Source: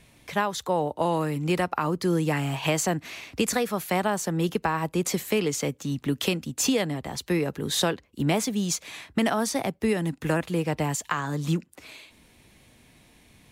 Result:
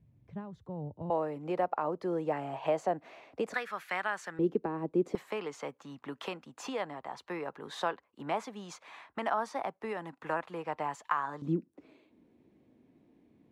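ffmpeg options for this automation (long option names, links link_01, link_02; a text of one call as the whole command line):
ffmpeg -i in.wav -af "asetnsamples=nb_out_samples=441:pad=0,asendcmd='1.1 bandpass f 640;3.54 bandpass f 1600;4.39 bandpass f 350;5.15 bandpass f 1000;11.42 bandpass f 310',bandpass=frequency=110:width_type=q:width=1.9:csg=0" out.wav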